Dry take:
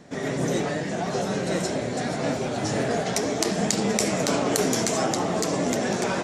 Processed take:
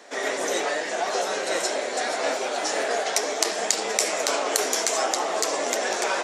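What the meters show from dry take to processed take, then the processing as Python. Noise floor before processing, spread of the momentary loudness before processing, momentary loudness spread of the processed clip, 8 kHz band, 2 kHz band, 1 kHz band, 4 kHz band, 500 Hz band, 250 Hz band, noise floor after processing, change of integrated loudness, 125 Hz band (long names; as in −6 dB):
−30 dBFS, 5 LU, 4 LU, +3.5 dB, +4.0 dB, +2.5 dB, +3.5 dB, −0.5 dB, −12.0 dB, −30 dBFS, +0.5 dB, below −25 dB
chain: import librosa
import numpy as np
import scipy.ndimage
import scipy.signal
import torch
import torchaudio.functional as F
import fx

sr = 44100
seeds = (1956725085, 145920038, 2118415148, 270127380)

p1 = scipy.signal.sosfilt(scipy.signal.bessel(4, 610.0, 'highpass', norm='mag', fs=sr, output='sos'), x)
p2 = fx.rider(p1, sr, range_db=10, speed_s=0.5)
p3 = p1 + (p2 * 10.0 ** (0.0 / 20.0))
y = p3 * 10.0 ** (-2.0 / 20.0)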